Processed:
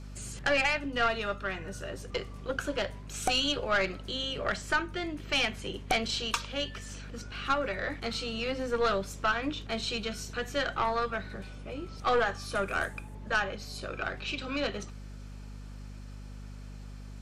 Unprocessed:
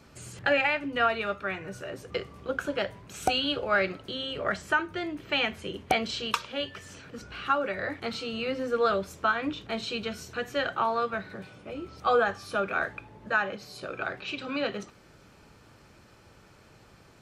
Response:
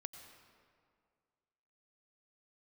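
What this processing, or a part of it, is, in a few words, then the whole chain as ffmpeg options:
valve amplifier with mains hum: -filter_complex "[0:a]asettb=1/sr,asplit=3[link_01][link_02][link_03];[link_01]atrim=end=0.774[link_04];[link_02]atrim=start=0.77:end=2.01,asetpts=PTS-STARTPTS,afade=type=in:duration=0.004:curve=qsin,afade=type=out:start_time=1.236:duration=0.004:curve=qsin,bandreject=frequency=2300:width=9[link_05];[link_03]atrim=start=2.006[link_06];[link_04][link_05]acrossfade=duration=0.004:curve1=hsin:curve2=qsin[link_07];[link_07][link_06]acrossfade=duration=0.004:curve1=qsin:curve2=hsin,aeval=exprs='(tanh(8.91*val(0)+0.45)-tanh(0.45))/8.91':channel_layout=same,aeval=exprs='val(0)+0.00794*(sin(2*PI*50*n/s)+sin(2*PI*2*50*n/s)/2+sin(2*PI*3*50*n/s)/3+sin(2*PI*4*50*n/s)/4+sin(2*PI*5*50*n/s)/5)':channel_layout=same,lowpass=7700,aemphasis=mode=production:type=50fm,asettb=1/sr,asplit=3[link_08][link_09][link_10];[link_08]atrim=end=12.554[link_11];[link_09]atrim=start=12.55:end=13.15,asetpts=PTS-STARTPTS,afade=type=in:duration=0.004:curve=qsin,afade=type=out:start_time=0.596:duration=0.004:curve=qsin,highshelf=frequency=6700:width_type=q:width=1.5:gain=12[link_12];[link_10]atrim=start=13.146[link_13];[link_11][link_12]acrossfade=duration=0.004:curve1=hsin:curve2=qsin[link_14];[link_14][link_13]acrossfade=duration=0.004:curve1=qsin:curve2=hsin"

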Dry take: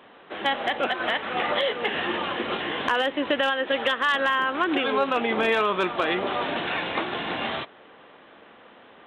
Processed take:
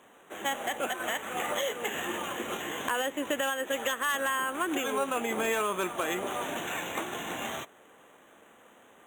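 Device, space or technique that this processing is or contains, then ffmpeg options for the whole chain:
crushed at another speed: -af "asetrate=22050,aresample=44100,acrusher=samples=9:mix=1:aa=0.000001,asetrate=88200,aresample=44100,volume=-6.5dB"

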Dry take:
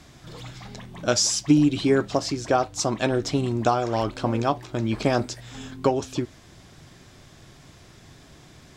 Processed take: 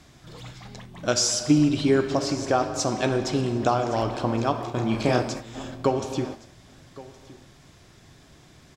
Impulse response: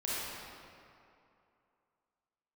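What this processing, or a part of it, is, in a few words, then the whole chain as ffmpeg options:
keyed gated reverb: -filter_complex "[0:a]asplit=3[link_01][link_02][link_03];[1:a]atrim=start_sample=2205[link_04];[link_02][link_04]afir=irnorm=-1:irlink=0[link_05];[link_03]apad=whole_len=386450[link_06];[link_05][link_06]sidechaingate=range=-33dB:threshold=-38dB:ratio=16:detection=peak,volume=-10.5dB[link_07];[link_01][link_07]amix=inputs=2:normalize=0,asplit=3[link_08][link_09][link_10];[link_08]afade=type=out:start_time=4.67:duration=0.02[link_11];[link_09]asplit=2[link_12][link_13];[link_13]adelay=32,volume=-4.5dB[link_14];[link_12][link_14]amix=inputs=2:normalize=0,afade=type=in:start_time=4.67:duration=0.02,afade=type=out:start_time=5.22:duration=0.02[link_15];[link_10]afade=type=in:start_time=5.22:duration=0.02[link_16];[link_11][link_15][link_16]amix=inputs=3:normalize=0,aecho=1:1:1117:0.1,volume=-3dB"

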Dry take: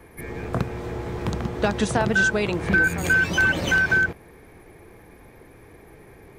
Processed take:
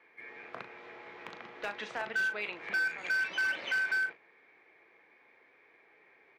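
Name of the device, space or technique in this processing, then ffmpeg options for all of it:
megaphone: -filter_complex "[0:a]highpass=670,lowpass=3500,lowpass=5600,equalizer=frequency=770:width_type=o:width=1.7:gain=-5,equalizer=frequency=2200:width_type=o:width=0.49:gain=6,asoftclip=type=hard:threshold=-18dB,asplit=2[link_01][link_02];[link_02]adelay=38,volume=-10dB[link_03];[link_01][link_03]amix=inputs=2:normalize=0,volume=-8.5dB"

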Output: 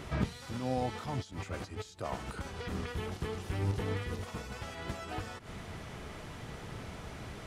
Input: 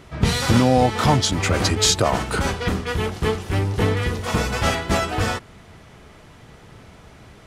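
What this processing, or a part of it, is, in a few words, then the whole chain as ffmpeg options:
de-esser from a sidechain: -filter_complex "[0:a]asplit=2[link_01][link_02];[link_02]highpass=4700,apad=whole_len=329103[link_03];[link_01][link_03]sidechaincompress=threshold=-52dB:ratio=20:attack=1.8:release=98,volume=1dB"

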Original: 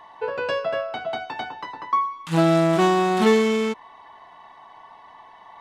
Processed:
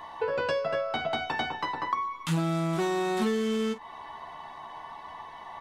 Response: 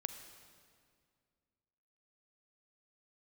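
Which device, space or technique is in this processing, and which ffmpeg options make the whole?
ASMR close-microphone chain: -af "lowshelf=frequency=170:gain=6.5,aecho=1:1:13|47:0.596|0.168,acompressor=threshold=-28dB:ratio=6,highshelf=frequency=7000:gain=6,volume=2dB"

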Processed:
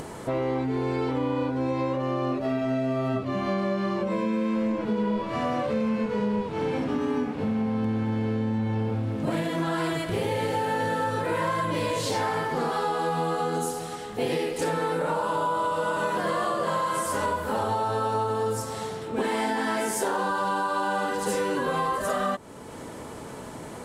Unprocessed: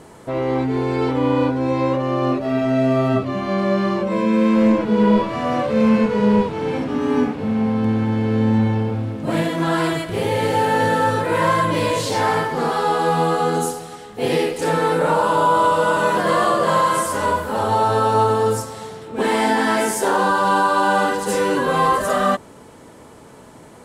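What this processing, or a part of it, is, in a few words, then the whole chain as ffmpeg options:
upward and downward compression: -af "acompressor=mode=upward:threshold=-32dB:ratio=2.5,acompressor=threshold=-24dB:ratio=6"

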